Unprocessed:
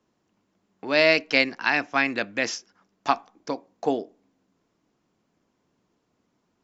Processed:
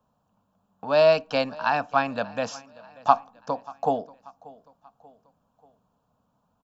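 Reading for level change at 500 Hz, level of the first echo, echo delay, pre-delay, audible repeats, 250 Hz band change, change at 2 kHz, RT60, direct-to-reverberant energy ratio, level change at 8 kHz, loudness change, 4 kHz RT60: +3.0 dB, −22.0 dB, 586 ms, no reverb audible, 2, −4.0 dB, −8.5 dB, no reverb audible, no reverb audible, can't be measured, −1.0 dB, no reverb audible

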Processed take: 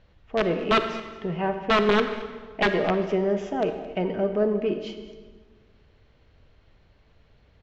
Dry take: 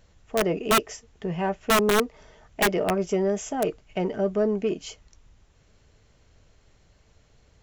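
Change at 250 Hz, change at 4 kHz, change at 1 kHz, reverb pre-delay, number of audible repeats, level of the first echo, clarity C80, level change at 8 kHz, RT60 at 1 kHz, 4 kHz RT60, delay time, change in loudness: +0.5 dB, −0.5 dB, +0.5 dB, 34 ms, 1, −18.0 dB, 9.5 dB, below −15 dB, 1.4 s, 1.2 s, 218 ms, 0.0 dB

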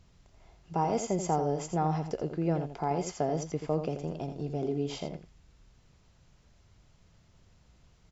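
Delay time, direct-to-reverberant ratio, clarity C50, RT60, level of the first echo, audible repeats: 84 ms, no reverb audible, no reverb audible, no reverb audible, −8.5 dB, 1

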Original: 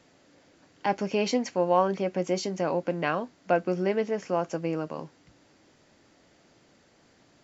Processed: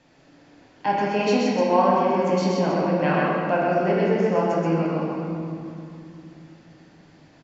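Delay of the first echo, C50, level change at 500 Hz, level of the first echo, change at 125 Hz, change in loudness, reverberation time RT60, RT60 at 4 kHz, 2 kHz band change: 128 ms, −3.0 dB, +5.5 dB, −3.0 dB, +9.5 dB, +6.0 dB, 2.7 s, 1.7 s, +6.5 dB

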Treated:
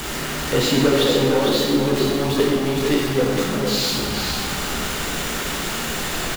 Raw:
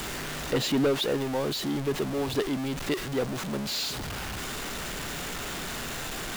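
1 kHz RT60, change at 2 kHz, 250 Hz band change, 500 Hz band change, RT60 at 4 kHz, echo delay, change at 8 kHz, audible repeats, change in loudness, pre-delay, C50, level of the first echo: 1.4 s, +9.5 dB, +9.5 dB, +10.0 dB, 1.3 s, 455 ms, +9.5 dB, 1, +9.5 dB, 5 ms, −1.0 dB, −5.5 dB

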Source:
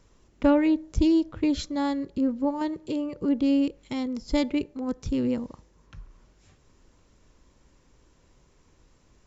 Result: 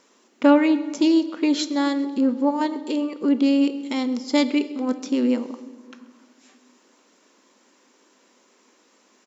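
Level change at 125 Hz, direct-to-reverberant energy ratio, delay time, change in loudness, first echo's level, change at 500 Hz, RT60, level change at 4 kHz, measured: below −10 dB, 11.5 dB, 132 ms, +4.5 dB, −21.5 dB, +5.0 dB, 1.5 s, +8.0 dB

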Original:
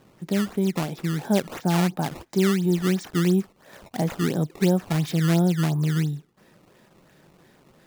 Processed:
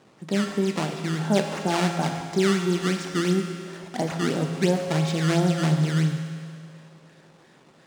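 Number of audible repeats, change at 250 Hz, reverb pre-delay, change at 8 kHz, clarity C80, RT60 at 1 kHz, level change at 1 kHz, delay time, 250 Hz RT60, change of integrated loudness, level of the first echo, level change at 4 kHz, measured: no echo audible, −1.5 dB, 7 ms, +1.5 dB, 6.0 dB, 2.2 s, +2.5 dB, no echo audible, 2.2 s, −0.5 dB, no echo audible, +3.0 dB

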